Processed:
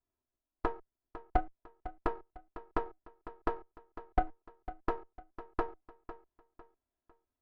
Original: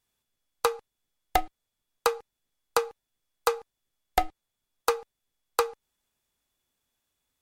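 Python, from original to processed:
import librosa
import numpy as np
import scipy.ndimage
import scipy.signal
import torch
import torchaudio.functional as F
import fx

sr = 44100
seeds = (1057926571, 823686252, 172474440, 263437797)

y = fx.lower_of_two(x, sr, delay_ms=3.0)
y = scipy.signal.sosfilt(scipy.signal.butter(2, 1000.0, 'lowpass', fs=sr, output='sos'), y)
y = fx.echo_feedback(y, sr, ms=502, feedback_pct=34, wet_db=-14.0)
y = y * 10.0 ** (-2.5 / 20.0)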